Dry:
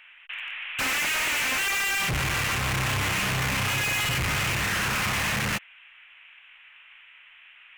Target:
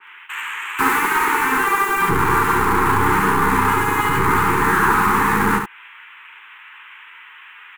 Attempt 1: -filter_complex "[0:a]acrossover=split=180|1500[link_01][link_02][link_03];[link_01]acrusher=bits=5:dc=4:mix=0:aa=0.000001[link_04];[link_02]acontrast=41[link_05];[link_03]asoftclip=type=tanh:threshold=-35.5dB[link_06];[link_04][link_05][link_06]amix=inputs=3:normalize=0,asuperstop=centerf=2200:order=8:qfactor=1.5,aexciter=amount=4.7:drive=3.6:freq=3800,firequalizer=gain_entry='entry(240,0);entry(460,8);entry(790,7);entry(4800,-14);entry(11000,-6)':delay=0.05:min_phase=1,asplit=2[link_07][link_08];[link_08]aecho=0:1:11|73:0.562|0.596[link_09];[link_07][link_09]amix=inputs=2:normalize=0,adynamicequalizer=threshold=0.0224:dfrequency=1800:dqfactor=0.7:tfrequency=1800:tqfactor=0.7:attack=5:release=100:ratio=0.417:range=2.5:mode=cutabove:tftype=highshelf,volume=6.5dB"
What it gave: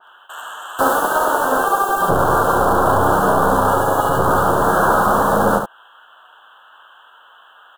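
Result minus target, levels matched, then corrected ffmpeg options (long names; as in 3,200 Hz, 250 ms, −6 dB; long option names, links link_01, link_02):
500 Hz band +6.5 dB
-filter_complex "[0:a]acrossover=split=180|1500[link_01][link_02][link_03];[link_01]acrusher=bits=5:dc=4:mix=0:aa=0.000001[link_04];[link_02]acontrast=41[link_05];[link_03]asoftclip=type=tanh:threshold=-35.5dB[link_06];[link_04][link_05][link_06]amix=inputs=3:normalize=0,asuperstop=centerf=610:order=8:qfactor=1.5,aexciter=amount=4.7:drive=3.6:freq=3800,firequalizer=gain_entry='entry(240,0);entry(460,8);entry(790,7);entry(4800,-14);entry(11000,-6)':delay=0.05:min_phase=1,asplit=2[link_07][link_08];[link_08]aecho=0:1:11|73:0.562|0.596[link_09];[link_07][link_09]amix=inputs=2:normalize=0,adynamicequalizer=threshold=0.0224:dfrequency=1800:dqfactor=0.7:tfrequency=1800:tqfactor=0.7:attack=5:release=100:ratio=0.417:range=2.5:mode=cutabove:tftype=highshelf,volume=6.5dB"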